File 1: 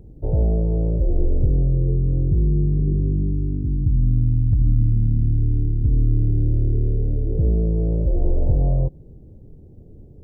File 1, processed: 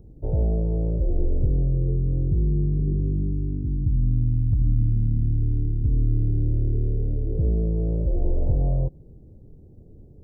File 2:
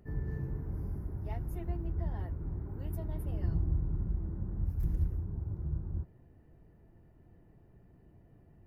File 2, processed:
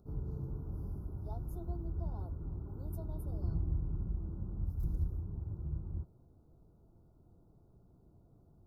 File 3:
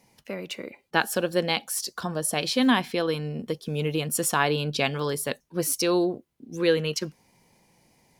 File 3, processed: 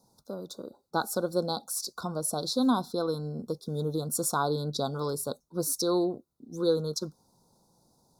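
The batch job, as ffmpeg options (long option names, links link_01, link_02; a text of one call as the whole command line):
ffmpeg -i in.wav -af "asuperstop=centerf=2300:order=20:qfactor=1.1,volume=-3.5dB" out.wav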